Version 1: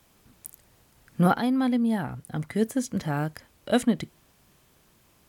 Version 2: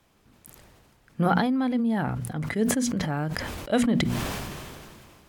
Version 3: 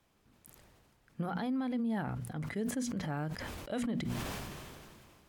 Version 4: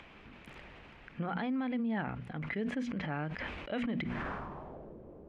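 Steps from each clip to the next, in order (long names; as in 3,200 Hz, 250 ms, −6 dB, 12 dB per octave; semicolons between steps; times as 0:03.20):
low-pass filter 4,000 Hz 6 dB per octave; mains-hum notches 60/120/180/240 Hz; level that may fall only so fast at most 26 dB per second; level −1 dB
brickwall limiter −19.5 dBFS, peak gain reduction 10.5 dB; level −8 dB
parametric band 110 Hz −9 dB 0.38 octaves; low-pass filter sweep 2,500 Hz → 490 Hz, 0:03.99–0:04.94; upward compression, threshold −40 dBFS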